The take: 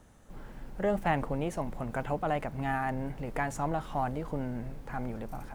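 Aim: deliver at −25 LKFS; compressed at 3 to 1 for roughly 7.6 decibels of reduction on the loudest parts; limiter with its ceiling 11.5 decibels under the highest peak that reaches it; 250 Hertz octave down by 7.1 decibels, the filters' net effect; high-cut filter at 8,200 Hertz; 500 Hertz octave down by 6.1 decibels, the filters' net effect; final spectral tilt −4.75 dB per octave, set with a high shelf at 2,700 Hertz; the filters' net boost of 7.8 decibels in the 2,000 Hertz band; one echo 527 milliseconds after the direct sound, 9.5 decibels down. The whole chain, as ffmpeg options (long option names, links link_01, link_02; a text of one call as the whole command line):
ffmpeg -i in.wav -af "lowpass=8200,equalizer=frequency=250:width_type=o:gain=-8,equalizer=frequency=500:width_type=o:gain=-7.5,equalizer=frequency=2000:width_type=o:gain=7.5,highshelf=frequency=2700:gain=7,acompressor=threshold=-32dB:ratio=3,alimiter=level_in=6dB:limit=-24dB:level=0:latency=1,volume=-6dB,aecho=1:1:527:0.335,volume=16dB" out.wav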